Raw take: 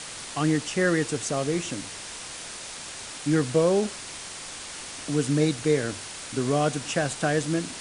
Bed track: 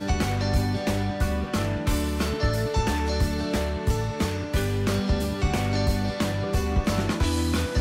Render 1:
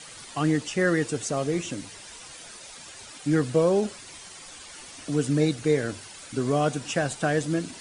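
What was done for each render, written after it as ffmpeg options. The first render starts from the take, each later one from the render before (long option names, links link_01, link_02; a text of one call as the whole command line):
ffmpeg -i in.wav -af "afftdn=noise_reduction=10:noise_floor=-39" out.wav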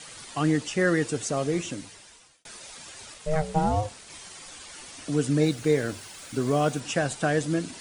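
ffmpeg -i in.wav -filter_complex "[0:a]asettb=1/sr,asplit=3[link_01][link_02][link_03];[link_01]atrim=end=3.144[link_04];[link_02]atrim=start=3.14:end=4.1,asetpts=PTS-STARTPTS,afade=type=in:duration=0.004:curve=qsin,afade=type=out:start_time=0.956:duration=0.004:curve=qsin,aeval=exprs='val(0)*sin(2*PI*310*n/s)':channel_layout=same[link_05];[link_03]atrim=start=4.096[link_06];[link_04][link_05]acrossfade=duration=0.004:curve1=hsin:curve2=qsin[link_07];[link_07][link_06]acrossfade=duration=0.004:curve1=qsin:curve2=hsin,asettb=1/sr,asplit=3[link_08][link_09][link_10];[link_08]atrim=end=5.434[link_11];[link_09]atrim=start=5.43:end=6.8,asetpts=PTS-STARTPTS,afade=type=in:duration=0.004:curve=qsin,afade=type=out:start_time=1.366:duration=0.004:curve=qsin,acrusher=bits=7:mix=0:aa=0.5[link_12];[link_10]atrim=start=6.796[link_13];[link_11][link_12]acrossfade=duration=0.004:curve1=hsin:curve2=qsin[link_14];[link_14][link_13]acrossfade=duration=0.004:curve1=qsin:curve2=hsin,asplit=2[link_15][link_16];[link_15]atrim=end=2.45,asetpts=PTS-STARTPTS,afade=type=out:start_time=1.62:duration=0.83[link_17];[link_16]atrim=start=2.45,asetpts=PTS-STARTPTS,afade=type=in:duration=0.004:curve=hsin[link_18];[link_17][link_18]concat=n=2:v=0:a=1" out.wav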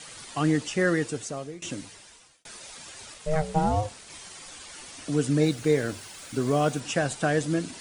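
ffmpeg -i in.wav -filter_complex "[0:a]asplit=2[link_01][link_02];[link_01]atrim=end=1.62,asetpts=PTS-STARTPTS,afade=type=out:start_time=0.61:duration=1.01:curve=qsin:silence=0.0841395[link_03];[link_02]atrim=start=1.62,asetpts=PTS-STARTPTS,afade=type=in:duration=0.004:curve=hsin:silence=0.0841395[link_04];[link_03][link_04]concat=n=2:v=0:a=1" out.wav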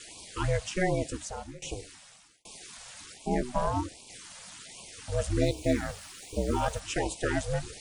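ffmpeg -i in.wav -af "aeval=exprs='val(0)*sin(2*PI*190*n/s)':channel_layout=same,afftfilt=real='re*(1-between(b*sr/1024,300*pow(1600/300,0.5+0.5*sin(2*PI*1.3*pts/sr))/1.41,300*pow(1600/300,0.5+0.5*sin(2*PI*1.3*pts/sr))*1.41))':imag='im*(1-between(b*sr/1024,300*pow(1600/300,0.5+0.5*sin(2*PI*1.3*pts/sr))/1.41,300*pow(1600/300,0.5+0.5*sin(2*PI*1.3*pts/sr))*1.41))':win_size=1024:overlap=0.75" out.wav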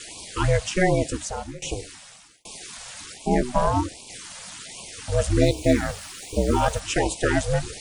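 ffmpeg -i in.wav -af "volume=7.5dB" out.wav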